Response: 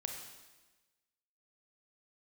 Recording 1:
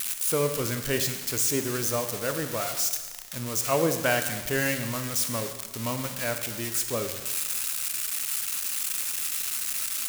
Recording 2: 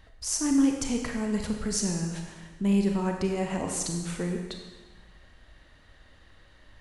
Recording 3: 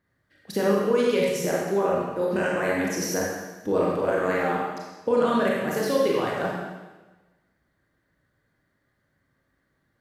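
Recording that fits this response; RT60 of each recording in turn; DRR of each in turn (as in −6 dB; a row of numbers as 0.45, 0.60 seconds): 2; 1.2, 1.2, 1.2 seconds; 7.0, 2.5, −4.0 decibels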